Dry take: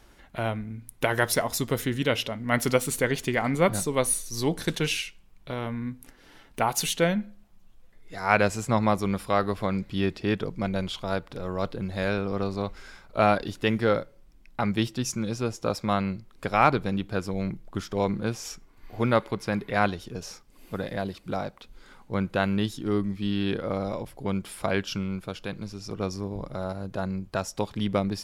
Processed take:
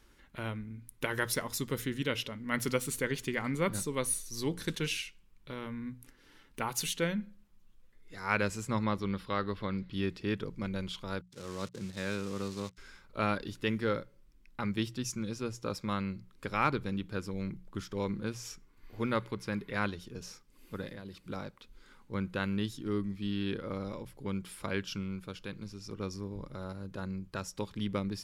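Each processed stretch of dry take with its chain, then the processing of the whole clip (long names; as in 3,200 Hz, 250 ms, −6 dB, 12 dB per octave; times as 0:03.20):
0:08.83–0:09.93: high shelf with overshoot 5,500 Hz −10.5 dB, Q 1.5 + notch filter 2,400 Hz, Q 13
0:11.21–0:12.78: spike at every zero crossing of −25 dBFS + noise gate −35 dBFS, range −41 dB + Chebyshev band-pass filter 120–6,400 Hz
0:20.88–0:21.30: downward compressor 4 to 1, threshold −33 dBFS + one half of a high-frequency compander encoder only
whole clip: parametric band 700 Hz −12.5 dB 0.44 octaves; mains-hum notches 60/120/180 Hz; level −6.5 dB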